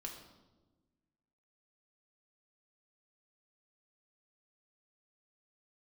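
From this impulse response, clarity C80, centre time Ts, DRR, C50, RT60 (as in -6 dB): 8.0 dB, 31 ms, 0.5 dB, 6.0 dB, 1.2 s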